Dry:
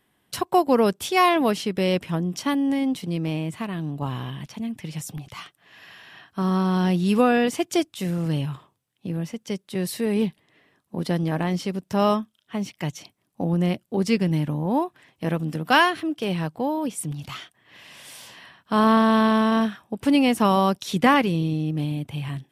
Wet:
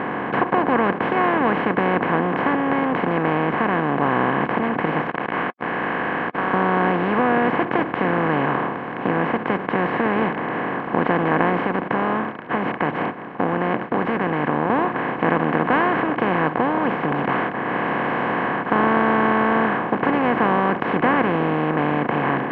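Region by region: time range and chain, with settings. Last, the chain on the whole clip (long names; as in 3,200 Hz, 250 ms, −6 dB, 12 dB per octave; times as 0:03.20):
0:05.07–0:06.54: Chebyshev band-pass filter 1,500–3,100 Hz + log-companded quantiser 4 bits
0:11.60–0:14.70: downward expander −51 dBFS + downward compressor 2 to 1, threshold −39 dBFS
whole clip: compressor on every frequency bin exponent 0.2; low-pass filter 2,200 Hz 24 dB per octave; level −7 dB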